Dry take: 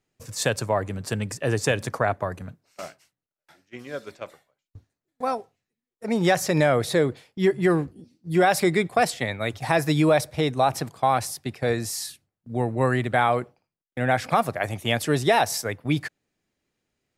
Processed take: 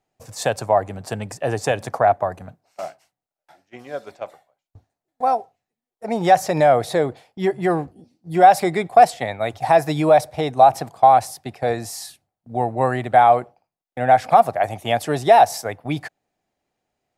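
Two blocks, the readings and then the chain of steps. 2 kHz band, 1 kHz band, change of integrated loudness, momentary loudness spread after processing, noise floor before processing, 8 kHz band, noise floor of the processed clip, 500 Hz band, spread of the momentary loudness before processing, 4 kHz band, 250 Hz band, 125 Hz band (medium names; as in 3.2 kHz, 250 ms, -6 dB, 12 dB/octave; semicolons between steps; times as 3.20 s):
-1.0 dB, +10.0 dB, +5.5 dB, 19 LU, under -85 dBFS, -2.0 dB, under -85 dBFS, +5.5 dB, 17 LU, -2.0 dB, -1.0 dB, -2.0 dB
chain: peaking EQ 740 Hz +14 dB 0.72 oct; trim -2 dB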